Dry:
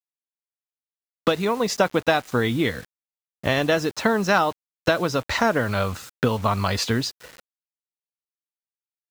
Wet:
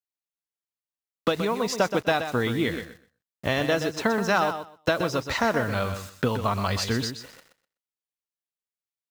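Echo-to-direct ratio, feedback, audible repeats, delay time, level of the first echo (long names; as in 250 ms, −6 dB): −9.0 dB, 17%, 2, 125 ms, −9.0 dB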